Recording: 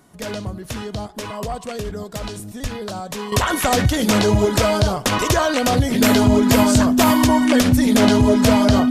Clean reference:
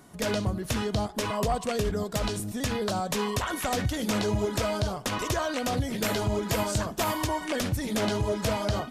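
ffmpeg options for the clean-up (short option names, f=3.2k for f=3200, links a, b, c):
-filter_complex "[0:a]bandreject=f=250:w=30,asplit=3[a][b][c];[a]afade=t=out:st=2.62:d=0.02[d];[b]highpass=f=140:w=0.5412,highpass=f=140:w=1.3066,afade=t=in:st=2.62:d=0.02,afade=t=out:st=2.74:d=0.02[e];[c]afade=t=in:st=2.74:d=0.02[f];[d][e][f]amix=inputs=3:normalize=0,asetnsamples=n=441:p=0,asendcmd='3.32 volume volume -11dB',volume=0dB"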